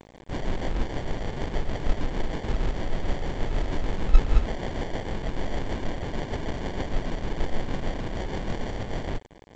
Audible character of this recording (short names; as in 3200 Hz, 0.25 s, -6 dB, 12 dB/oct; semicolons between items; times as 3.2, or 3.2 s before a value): a quantiser's noise floor 8-bit, dither none; tremolo triangle 6.5 Hz, depth 50%; aliases and images of a low sample rate 1300 Hz, jitter 0%; G.722